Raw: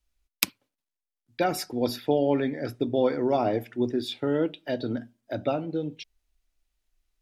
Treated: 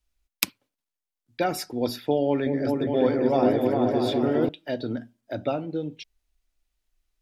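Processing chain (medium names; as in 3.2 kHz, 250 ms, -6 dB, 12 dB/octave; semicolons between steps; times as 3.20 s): 2.26–4.49 s: delay with an opening low-pass 203 ms, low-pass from 400 Hz, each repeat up 2 oct, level 0 dB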